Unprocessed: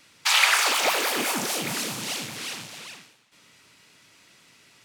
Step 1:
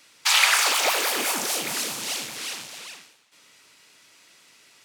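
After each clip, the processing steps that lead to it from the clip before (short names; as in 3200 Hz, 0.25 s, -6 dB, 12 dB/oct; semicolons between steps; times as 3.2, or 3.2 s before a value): tone controls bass -10 dB, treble +3 dB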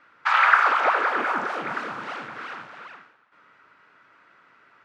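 synth low-pass 1400 Hz, resonance Q 3.4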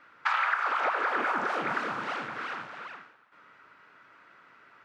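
compressor 10:1, threshold -24 dBFS, peak gain reduction 14 dB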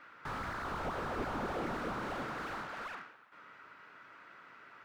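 slew limiter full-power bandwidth 12 Hz; gain +1 dB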